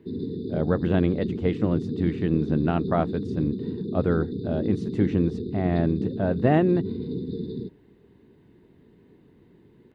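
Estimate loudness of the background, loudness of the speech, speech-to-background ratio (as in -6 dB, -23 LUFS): -31.5 LUFS, -26.0 LUFS, 5.5 dB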